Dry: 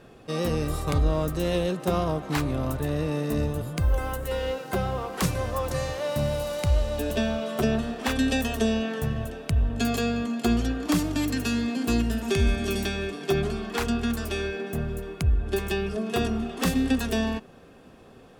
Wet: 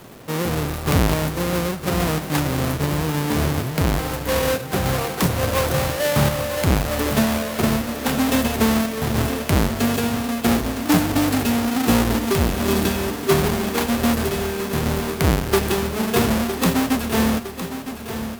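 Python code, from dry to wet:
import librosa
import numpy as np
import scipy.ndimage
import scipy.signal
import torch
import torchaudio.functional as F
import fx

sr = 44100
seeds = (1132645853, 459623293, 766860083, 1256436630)

p1 = fx.halfwave_hold(x, sr)
p2 = scipy.signal.sosfilt(scipy.signal.butter(2, 79.0, 'highpass', fs=sr, output='sos'), p1)
p3 = fx.peak_eq(p2, sr, hz=13000.0, db=6.0, octaves=0.55)
p4 = fx.rider(p3, sr, range_db=10, speed_s=0.5)
p5 = p3 + (p4 * librosa.db_to_amplitude(2.5))
p6 = fx.quant_dither(p5, sr, seeds[0], bits=6, dither='none')
p7 = fx.tremolo_random(p6, sr, seeds[1], hz=3.5, depth_pct=55)
p8 = p7 + fx.echo_feedback(p7, sr, ms=960, feedback_pct=59, wet_db=-11.0, dry=0)
y = p8 * librosa.db_to_amplitude(-3.0)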